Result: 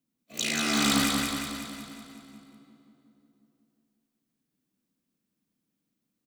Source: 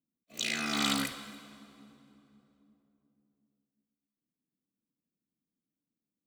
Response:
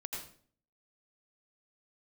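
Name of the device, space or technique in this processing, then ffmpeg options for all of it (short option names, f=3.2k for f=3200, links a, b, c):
one-band saturation: -filter_complex "[0:a]acrossover=split=550|5000[a][b][c];[b]asoftclip=type=tanh:threshold=-34dB[d];[a][d][c]amix=inputs=3:normalize=0,asettb=1/sr,asplit=3[e][f][g];[e]atrim=end=0.764[h];[f]atrim=start=0.76:end=1.89,asetpts=PTS-STARTPTS,afade=t=in:d=0.004:c=qsin,afade=t=out:st=1.126:d=0.004:c=qsin,asubboost=boost=9:cutoff=150[i];[g]atrim=start=1.886[j];[h][i]acrossfade=d=0.004:c1=hsin:c2=qsin[k];[k][j]acrossfade=d=0.004:c1=qsin:c2=hsin,aecho=1:1:184|368|552|736|920|1104|1288|1472:0.668|0.381|0.217|0.124|0.0706|0.0402|0.0229|0.0131,volume=7dB"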